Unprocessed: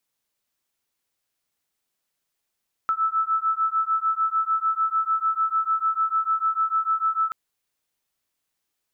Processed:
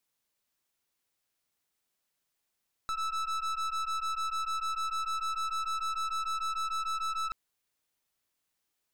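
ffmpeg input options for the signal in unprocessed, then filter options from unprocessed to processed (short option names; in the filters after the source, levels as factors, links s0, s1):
-f lavfi -i "aevalsrc='0.0668*(sin(2*PI*1310*t)+sin(2*PI*1316.7*t))':d=4.43:s=44100"
-af "aeval=exprs='(tanh(39.8*val(0)+0.5)-tanh(0.5))/39.8':c=same"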